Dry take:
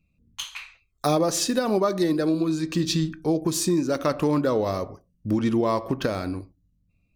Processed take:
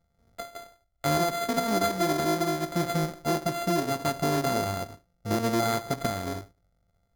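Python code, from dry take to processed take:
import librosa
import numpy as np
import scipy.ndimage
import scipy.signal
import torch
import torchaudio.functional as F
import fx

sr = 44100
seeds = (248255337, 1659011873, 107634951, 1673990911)

y = np.r_[np.sort(x[:len(x) // 64 * 64].reshape(-1, 64), axis=1).ravel(), x[len(x) // 64 * 64:]]
y = fx.air_absorb(y, sr, metres=200.0, at=(3.23, 5.53))
y = np.repeat(scipy.signal.resample_poly(y, 1, 8), 8)[:len(y)]
y = F.gain(torch.from_numpy(y), -3.0).numpy()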